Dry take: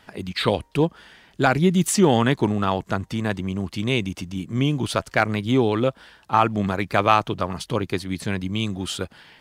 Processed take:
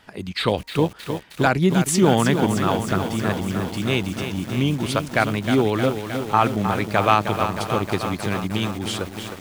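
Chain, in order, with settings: lo-fi delay 0.311 s, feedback 80%, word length 6-bit, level -8 dB

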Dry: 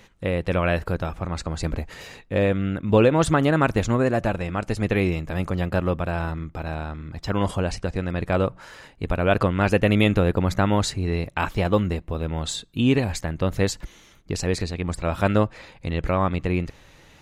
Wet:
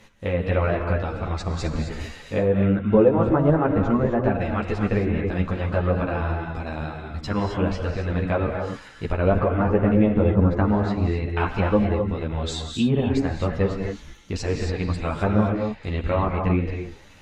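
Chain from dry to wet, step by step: treble ducked by the level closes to 1000 Hz, closed at -15.5 dBFS; non-linear reverb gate 0.29 s rising, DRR 3.5 dB; ensemble effect; gain +2.5 dB

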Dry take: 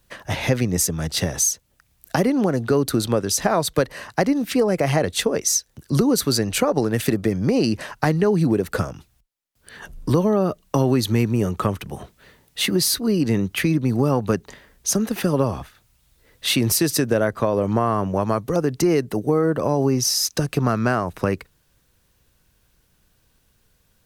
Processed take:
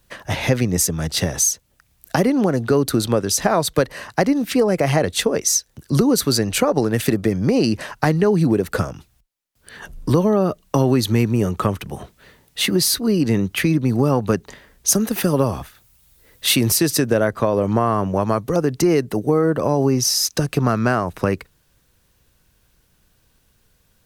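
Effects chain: 14.88–16.71 high shelf 9000 Hz +9.5 dB; gain +2 dB

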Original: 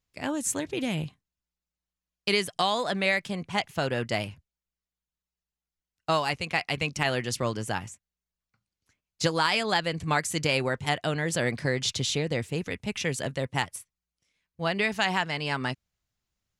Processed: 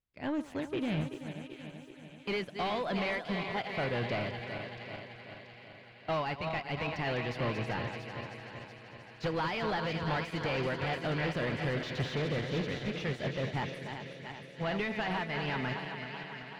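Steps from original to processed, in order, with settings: regenerating reverse delay 0.191 s, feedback 83%, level -10 dB; high shelf 6600 Hz +10.5 dB; notch 1200 Hz, Q 18; hard clip -26.5 dBFS, distortion -7 dB; air absorption 320 m; thin delay 0.683 s, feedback 57%, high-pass 1500 Hz, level -6 dB; upward expander 1.5:1, over -43 dBFS

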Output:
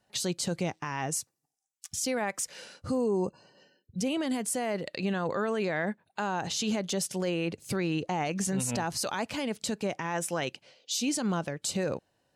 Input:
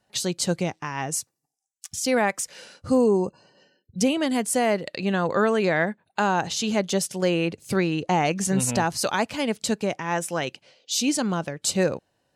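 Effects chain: limiter -19.5 dBFS, peak gain reduction 8 dB; gain -2 dB

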